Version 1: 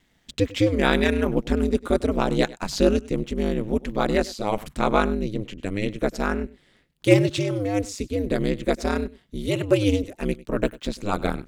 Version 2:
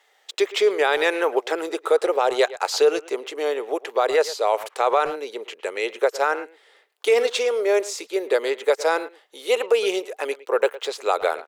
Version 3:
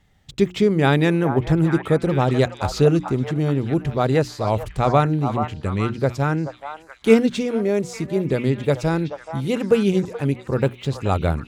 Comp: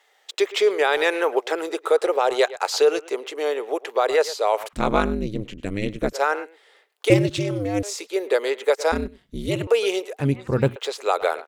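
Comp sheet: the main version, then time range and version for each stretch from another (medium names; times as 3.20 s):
2
4.73–6.13 s: from 1
7.10–7.83 s: from 1
8.92–9.67 s: from 1
10.19–10.76 s: from 3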